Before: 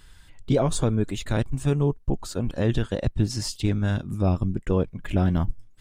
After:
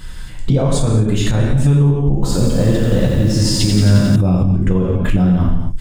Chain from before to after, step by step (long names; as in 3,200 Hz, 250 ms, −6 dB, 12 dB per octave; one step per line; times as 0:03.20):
low-shelf EQ 310 Hz +6.5 dB
reverb whose tail is shaped and stops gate 300 ms falling, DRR −2 dB
downward compressor 6 to 1, threshold −21 dBFS, peak gain reduction 13 dB
boost into a limiter +17.5 dB
0:02.14–0:04.16: feedback echo at a low word length 89 ms, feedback 80%, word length 6 bits, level −5.5 dB
level −5 dB